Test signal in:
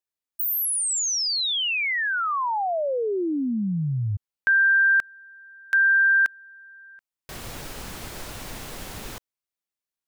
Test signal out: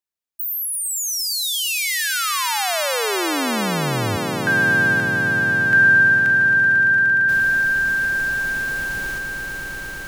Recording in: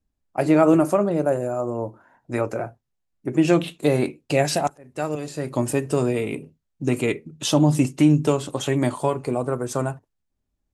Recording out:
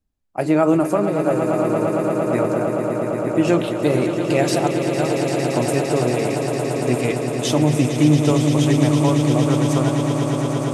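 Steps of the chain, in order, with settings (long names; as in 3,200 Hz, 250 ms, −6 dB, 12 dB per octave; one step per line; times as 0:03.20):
echo that builds up and dies away 114 ms, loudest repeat 8, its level −10 dB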